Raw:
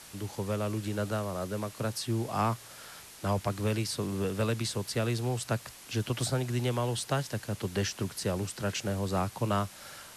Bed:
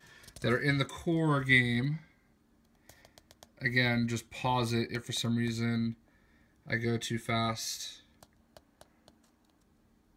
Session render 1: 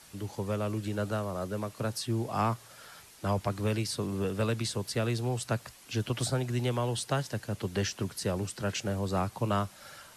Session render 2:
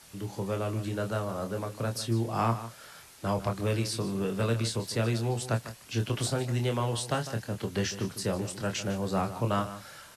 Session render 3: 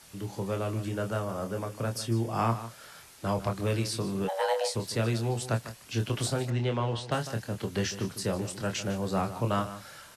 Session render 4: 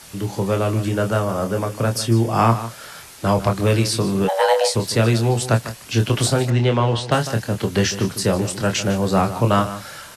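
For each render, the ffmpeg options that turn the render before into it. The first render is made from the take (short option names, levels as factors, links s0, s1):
-af "afftdn=nr=6:nf=-50"
-filter_complex "[0:a]asplit=2[s0][s1];[s1]adelay=26,volume=0.501[s2];[s0][s2]amix=inputs=2:normalize=0,asplit=2[s3][s4];[s4]adelay=151.6,volume=0.224,highshelf=f=4000:g=-3.41[s5];[s3][s5]amix=inputs=2:normalize=0"
-filter_complex "[0:a]asettb=1/sr,asplit=3[s0][s1][s2];[s0]atrim=end=0.844[s3];[s1]atrim=start=0.84:end=2.5,asetpts=PTS-STARTPTS,afade=t=in:d=0.004:c=qsin,afade=t=out:st=1.656:d=0.004:c=qsin,bandreject=f=4000:w=8[s4];[s2]atrim=start=2.496[s5];[s3][s4]acrossfade=d=0.004:c1=hsin:c2=qsin[s6];[s6][s5]acrossfade=d=0.004:c1=qsin:c2=hsin,asplit=3[s7][s8][s9];[s7]afade=t=out:st=4.27:d=0.02[s10];[s8]afreqshift=380,afade=t=in:st=4.27:d=0.02,afade=t=out:st=4.74:d=0.02[s11];[s9]afade=t=in:st=4.74:d=0.02[s12];[s10][s11][s12]amix=inputs=3:normalize=0,asettb=1/sr,asplit=3[s13][s14][s15];[s13]atrim=end=6.504[s16];[s14]atrim=start=6.5:end=7.12,asetpts=PTS-STARTPTS,afade=t=in:d=0.004:c=qsin,afade=t=out:st=0.616:d=0.004:c=qsin,lowpass=4000[s17];[s15]atrim=start=7.116[s18];[s16][s17]acrossfade=d=0.004:c1=hsin:c2=qsin[s19];[s19][s18]acrossfade=d=0.004:c1=qsin:c2=hsin"
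-af "volume=3.76"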